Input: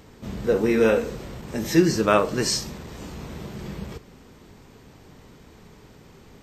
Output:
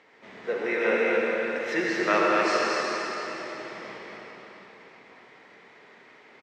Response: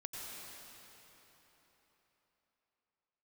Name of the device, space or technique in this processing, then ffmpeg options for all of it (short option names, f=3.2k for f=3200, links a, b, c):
station announcement: -filter_complex "[0:a]highpass=470,lowpass=3.6k,equalizer=f=2k:t=o:w=0.49:g=10,aecho=1:1:72.89|244.9:0.316|0.501[a];[1:a]atrim=start_sample=2205[b];[a][b]afir=irnorm=-1:irlink=0"